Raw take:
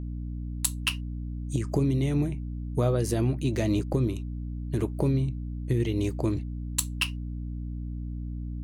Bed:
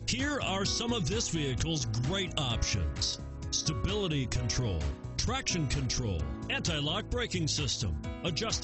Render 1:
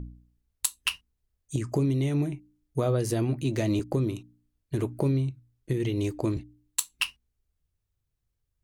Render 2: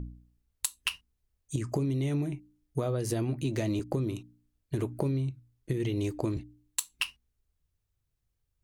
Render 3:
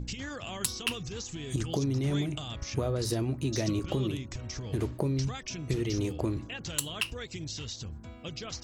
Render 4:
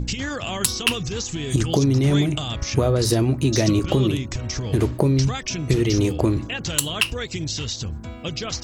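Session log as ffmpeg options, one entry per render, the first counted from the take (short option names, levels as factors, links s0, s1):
-af "bandreject=f=60:t=h:w=4,bandreject=f=120:t=h:w=4,bandreject=f=180:t=h:w=4,bandreject=f=240:t=h:w=4,bandreject=f=300:t=h:w=4"
-af "acompressor=threshold=0.0501:ratio=6"
-filter_complex "[1:a]volume=0.422[s0];[0:a][s0]amix=inputs=2:normalize=0"
-af "volume=3.55,alimiter=limit=0.794:level=0:latency=1"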